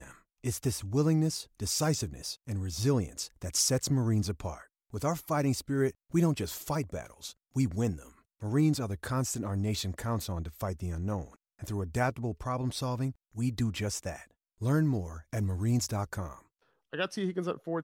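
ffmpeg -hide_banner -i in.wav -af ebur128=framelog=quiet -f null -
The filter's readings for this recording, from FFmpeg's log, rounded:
Integrated loudness:
  I:         -31.9 LUFS
  Threshold: -42.3 LUFS
Loudness range:
  LRA:         4.0 LU
  Threshold: -52.2 LUFS
  LRA low:   -34.4 LUFS
  LRA high:  -30.4 LUFS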